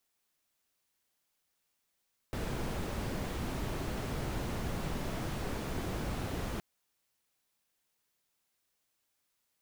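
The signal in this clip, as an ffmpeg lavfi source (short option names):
-f lavfi -i "anoisesrc=c=brown:a=0.0785:d=4.27:r=44100:seed=1"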